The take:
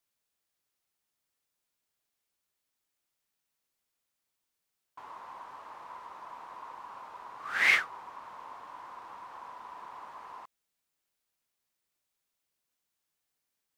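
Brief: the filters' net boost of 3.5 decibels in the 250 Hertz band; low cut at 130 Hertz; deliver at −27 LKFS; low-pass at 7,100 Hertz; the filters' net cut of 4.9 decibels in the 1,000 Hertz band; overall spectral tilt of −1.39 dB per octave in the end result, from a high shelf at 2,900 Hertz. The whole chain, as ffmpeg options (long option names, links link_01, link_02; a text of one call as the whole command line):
ffmpeg -i in.wav -af "highpass=130,lowpass=7100,equalizer=frequency=250:width_type=o:gain=5.5,equalizer=frequency=1000:width_type=o:gain=-5,highshelf=frequency=2900:gain=-6.5,volume=2.5dB" out.wav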